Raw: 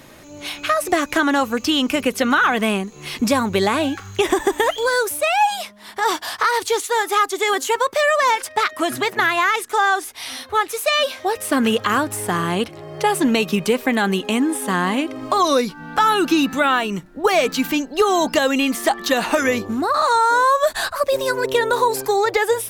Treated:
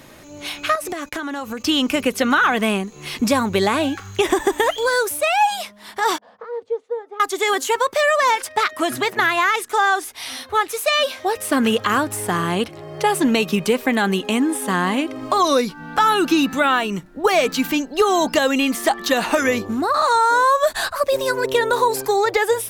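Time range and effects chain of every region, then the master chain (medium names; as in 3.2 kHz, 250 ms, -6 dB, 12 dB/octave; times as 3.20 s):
0.75–1.64 s: gate -33 dBFS, range -32 dB + compression, threshold -24 dBFS
6.18–7.20 s: two resonant band-passes 330 Hz, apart 1.1 oct + distance through air 58 m
whole clip: none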